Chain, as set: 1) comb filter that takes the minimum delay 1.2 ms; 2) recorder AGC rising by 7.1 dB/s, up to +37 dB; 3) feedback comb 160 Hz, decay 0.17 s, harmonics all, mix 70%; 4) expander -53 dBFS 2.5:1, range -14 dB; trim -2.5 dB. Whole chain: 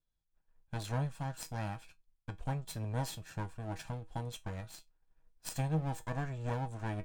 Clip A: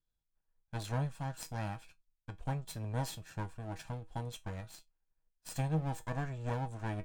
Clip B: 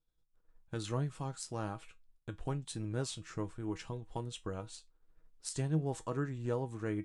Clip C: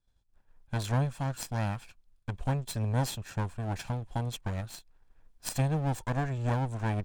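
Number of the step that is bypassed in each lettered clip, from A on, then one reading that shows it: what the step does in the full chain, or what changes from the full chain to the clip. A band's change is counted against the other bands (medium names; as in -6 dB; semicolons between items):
2, crest factor change -2.5 dB; 1, 1 kHz band -4.5 dB; 3, momentary loudness spread change -2 LU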